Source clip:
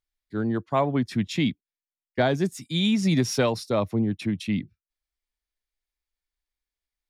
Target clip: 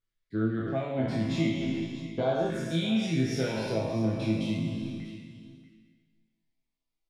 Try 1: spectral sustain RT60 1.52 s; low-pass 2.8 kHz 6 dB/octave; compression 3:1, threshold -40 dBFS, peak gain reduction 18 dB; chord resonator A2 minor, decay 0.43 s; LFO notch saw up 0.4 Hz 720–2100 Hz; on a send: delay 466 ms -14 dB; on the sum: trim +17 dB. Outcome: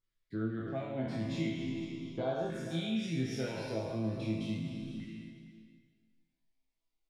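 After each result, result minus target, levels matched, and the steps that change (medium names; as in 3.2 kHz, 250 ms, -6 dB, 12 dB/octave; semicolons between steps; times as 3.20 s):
compression: peak gain reduction +7 dB; echo 172 ms early
change: compression 3:1, threshold -29.5 dBFS, peak gain reduction 11 dB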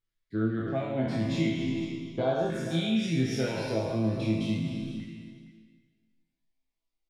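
echo 172 ms early
change: delay 638 ms -14 dB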